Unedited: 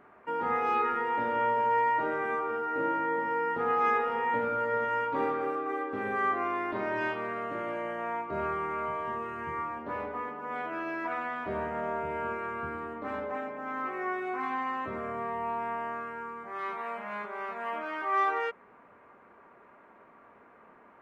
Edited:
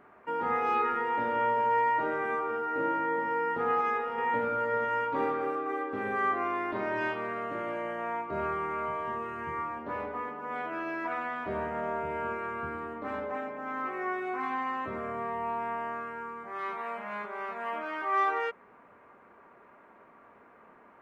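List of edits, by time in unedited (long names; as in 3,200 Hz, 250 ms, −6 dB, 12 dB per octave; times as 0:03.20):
0:03.81–0:04.18: clip gain −3.5 dB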